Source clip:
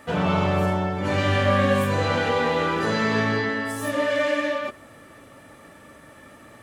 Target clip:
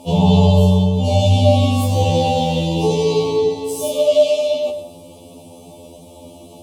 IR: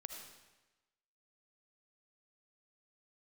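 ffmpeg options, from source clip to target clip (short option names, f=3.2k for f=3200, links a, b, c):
-filter_complex "[0:a]asuperstop=centerf=1600:order=8:qfactor=0.86,asplit=2[a][b];[1:a]atrim=start_sample=2205,afade=t=out:st=0.25:d=0.01,atrim=end_sample=11466[c];[b][c]afir=irnorm=-1:irlink=0,volume=5dB[d];[a][d]amix=inputs=2:normalize=0,asettb=1/sr,asplit=3[e][f][g];[e]atrim=end=1.674[h];[f]atrim=start=1.67:end=2.65,asetpts=PTS-STARTPTS,afade=t=in:d=0.004:c=qsin,afade=t=out:st=0.976:d=0.004:c=qsin,aeval=exprs='sgn(val(0))*max(abs(val(0))-0.00335,0)':c=same[i];[g]atrim=start=2.646[j];[h][i]acrossfade=d=0.004:c1=hsin:c2=qsin[k];[k][j]acrossfade=d=0.004:c1=qsin:c2=hsin,afftfilt=real='re*2*eq(mod(b,4),0)':imag='im*2*eq(mod(b,4),0)':win_size=2048:overlap=0.75,volume=5.5dB"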